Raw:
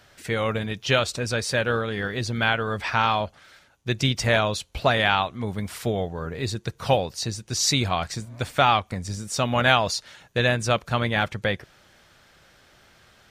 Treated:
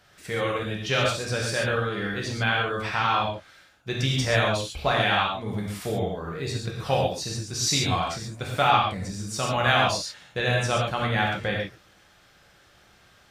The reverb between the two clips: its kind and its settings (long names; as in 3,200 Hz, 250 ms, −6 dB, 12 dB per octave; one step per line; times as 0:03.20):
reverb whose tail is shaped and stops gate 160 ms flat, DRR −2.5 dB
level −5.5 dB